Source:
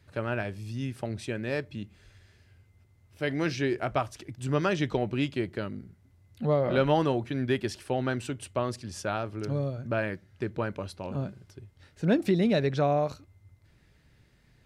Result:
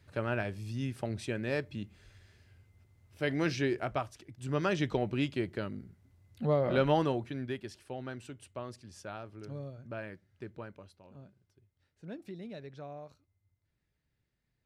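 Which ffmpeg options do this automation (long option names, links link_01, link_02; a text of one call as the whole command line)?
ffmpeg -i in.wav -af "volume=5dB,afade=type=out:start_time=3.58:duration=0.69:silence=0.398107,afade=type=in:start_time=4.27:duration=0.46:silence=0.446684,afade=type=out:start_time=6.96:duration=0.64:silence=0.354813,afade=type=out:start_time=10.47:duration=0.55:silence=0.398107" out.wav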